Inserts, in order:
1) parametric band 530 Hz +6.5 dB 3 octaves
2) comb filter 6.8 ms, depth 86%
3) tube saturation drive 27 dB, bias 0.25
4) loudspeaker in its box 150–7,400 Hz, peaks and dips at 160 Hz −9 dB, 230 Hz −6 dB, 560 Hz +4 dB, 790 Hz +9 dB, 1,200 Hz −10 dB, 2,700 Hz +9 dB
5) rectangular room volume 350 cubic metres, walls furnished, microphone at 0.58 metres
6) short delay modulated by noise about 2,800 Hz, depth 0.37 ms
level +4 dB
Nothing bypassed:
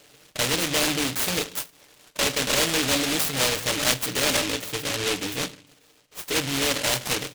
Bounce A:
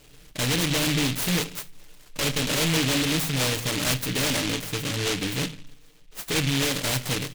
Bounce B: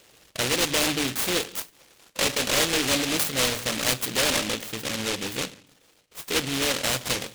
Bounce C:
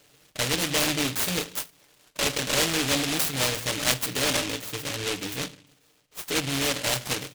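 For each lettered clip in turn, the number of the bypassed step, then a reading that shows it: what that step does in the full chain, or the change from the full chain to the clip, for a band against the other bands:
4, change in crest factor −5.0 dB
2, change in momentary loudness spread +2 LU
1, change in integrated loudness −2.0 LU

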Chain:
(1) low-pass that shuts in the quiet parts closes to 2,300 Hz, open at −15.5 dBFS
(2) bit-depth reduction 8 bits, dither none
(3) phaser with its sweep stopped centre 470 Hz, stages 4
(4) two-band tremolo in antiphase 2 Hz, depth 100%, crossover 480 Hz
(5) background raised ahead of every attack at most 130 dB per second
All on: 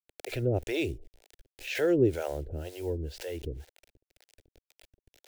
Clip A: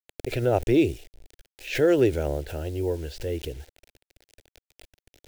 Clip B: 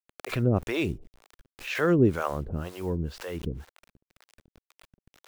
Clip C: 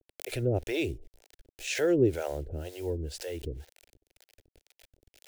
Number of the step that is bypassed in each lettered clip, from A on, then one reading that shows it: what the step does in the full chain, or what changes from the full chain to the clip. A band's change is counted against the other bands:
4, 1 kHz band +4.5 dB
3, 1 kHz band +6.5 dB
1, 8 kHz band +6.5 dB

